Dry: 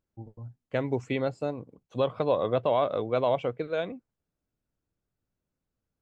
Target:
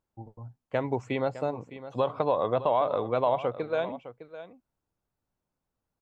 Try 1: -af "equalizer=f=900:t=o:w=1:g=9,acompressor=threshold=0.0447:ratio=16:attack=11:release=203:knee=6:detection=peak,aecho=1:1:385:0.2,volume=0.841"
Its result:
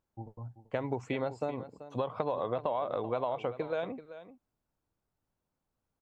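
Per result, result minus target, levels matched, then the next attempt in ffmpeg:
compression: peak gain reduction +8.5 dB; echo 224 ms early
-af "equalizer=f=900:t=o:w=1:g=9,acompressor=threshold=0.133:ratio=16:attack=11:release=203:knee=6:detection=peak,aecho=1:1:385:0.2,volume=0.841"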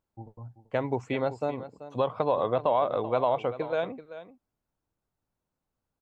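echo 224 ms early
-af "equalizer=f=900:t=o:w=1:g=9,acompressor=threshold=0.133:ratio=16:attack=11:release=203:knee=6:detection=peak,aecho=1:1:609:0.2,volume=0.841"

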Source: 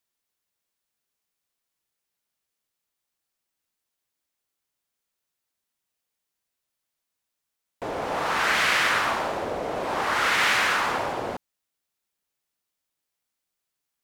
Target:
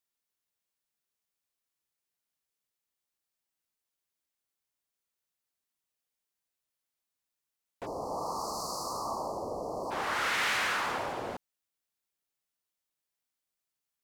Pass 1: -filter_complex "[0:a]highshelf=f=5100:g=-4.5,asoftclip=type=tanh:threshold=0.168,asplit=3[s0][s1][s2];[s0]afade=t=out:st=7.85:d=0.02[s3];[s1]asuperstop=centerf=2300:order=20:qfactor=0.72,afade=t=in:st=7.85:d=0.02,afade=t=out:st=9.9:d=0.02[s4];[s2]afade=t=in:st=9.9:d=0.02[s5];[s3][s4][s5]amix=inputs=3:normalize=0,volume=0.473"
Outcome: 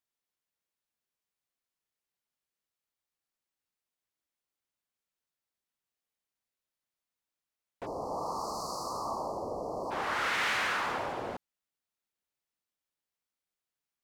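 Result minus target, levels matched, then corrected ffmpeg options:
8 kHz band -3.5 dB
-filter_complex "[0:a]highshelf=f=5100:g=2,asoftclip=type=tanh:threshold=0.168,asplit=3[s0][s1][s2];[s0]afade=t=out:st=7.85:d=0.02[s3];[s1]asuperstop=centerf=2300:order=20:qfactor=0.72,afade=t=in:st=7.85:d=0.02,afade=t=out:st=9.9:d=0.02[s4];[s2]afade=t=in:st=9.9:d=0.02[s5];[s3][s4][s5]amix=inputs=3:normalize=0,volume=0.473"

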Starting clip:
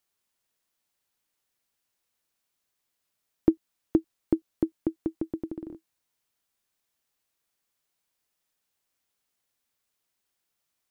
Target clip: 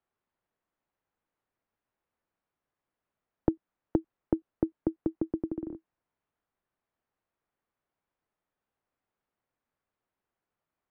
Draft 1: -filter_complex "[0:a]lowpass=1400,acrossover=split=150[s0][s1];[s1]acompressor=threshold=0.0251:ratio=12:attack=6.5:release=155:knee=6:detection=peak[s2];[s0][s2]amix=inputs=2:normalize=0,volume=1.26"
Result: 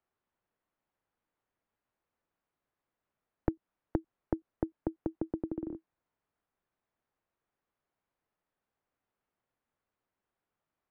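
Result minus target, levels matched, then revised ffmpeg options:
compression: peak gain reduction +8 dB
-filter_complex "[0:a]lowpass=1400,acrossover=split=150[s0][s1];[s1]acompressor=threshold=0.0668:ratio=12:attack=6.5:release=155:knee=6:detection=peak[s2];[s0][s2]amix=inputs=2:normalize=0,volume=1.26"

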